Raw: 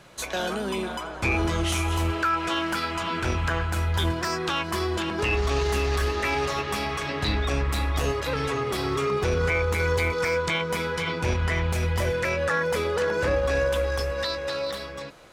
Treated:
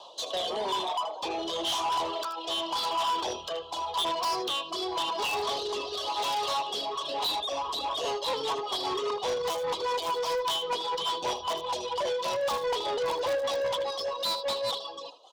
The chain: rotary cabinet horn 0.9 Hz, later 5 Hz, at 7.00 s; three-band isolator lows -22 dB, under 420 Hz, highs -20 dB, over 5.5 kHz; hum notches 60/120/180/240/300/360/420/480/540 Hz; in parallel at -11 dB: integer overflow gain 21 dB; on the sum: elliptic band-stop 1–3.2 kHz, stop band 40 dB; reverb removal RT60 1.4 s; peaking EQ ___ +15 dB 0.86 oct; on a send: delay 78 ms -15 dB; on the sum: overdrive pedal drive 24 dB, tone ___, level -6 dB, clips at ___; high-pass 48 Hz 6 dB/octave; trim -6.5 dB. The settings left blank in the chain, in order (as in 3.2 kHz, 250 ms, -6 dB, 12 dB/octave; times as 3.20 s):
1.6 kHz, 7.2 kHz, -14.5 dBFS